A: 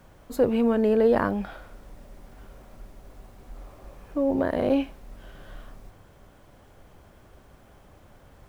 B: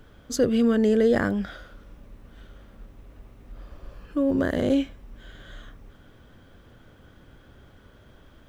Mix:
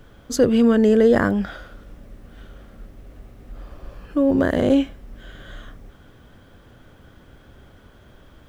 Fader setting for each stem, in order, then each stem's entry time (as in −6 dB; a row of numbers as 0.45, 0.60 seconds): −5.5, +3.0 decibels; 0.00, 0.00 seconds